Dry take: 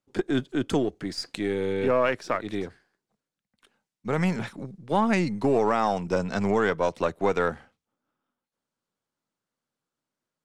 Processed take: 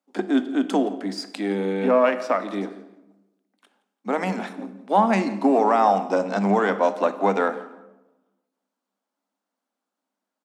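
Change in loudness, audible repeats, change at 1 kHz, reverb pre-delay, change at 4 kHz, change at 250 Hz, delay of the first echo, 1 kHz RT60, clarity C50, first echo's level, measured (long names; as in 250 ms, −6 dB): +4.0 dB, 2, +7.0 dB, 18 ms, 0.0 dB, +4.0 dB, 169 ms, 0.90 s, 12.5 dB, −20.0 dB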